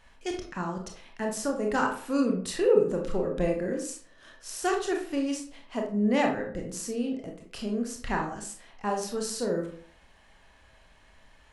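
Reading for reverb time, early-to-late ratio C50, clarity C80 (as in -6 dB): 0.50 s, 6.5 dB, 11.0 dB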